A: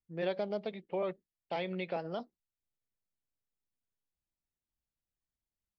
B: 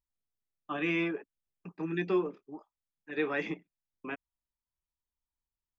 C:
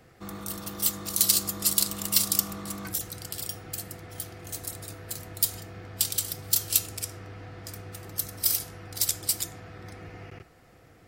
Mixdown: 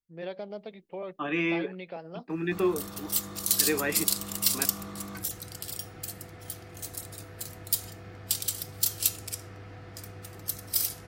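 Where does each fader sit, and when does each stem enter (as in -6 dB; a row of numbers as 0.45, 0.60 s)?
-3.5, +2.5, -2.5 dB; 0.00, 0.50, 2.30 s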